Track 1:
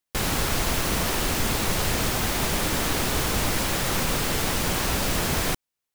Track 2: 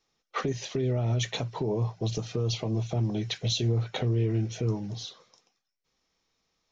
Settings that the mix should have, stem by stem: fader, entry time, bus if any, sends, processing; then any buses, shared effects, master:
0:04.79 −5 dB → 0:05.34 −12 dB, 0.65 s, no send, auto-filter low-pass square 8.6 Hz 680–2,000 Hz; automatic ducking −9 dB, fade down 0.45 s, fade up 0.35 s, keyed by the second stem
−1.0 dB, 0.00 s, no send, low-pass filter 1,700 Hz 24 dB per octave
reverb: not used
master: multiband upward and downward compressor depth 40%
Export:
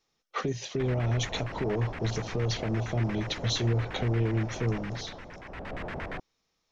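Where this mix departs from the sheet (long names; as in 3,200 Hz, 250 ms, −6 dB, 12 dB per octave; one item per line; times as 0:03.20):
stem 2: missing low-pass filter 1,700 Hz 24 dB per octave
master: missing multiband upward and downward compressor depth 40%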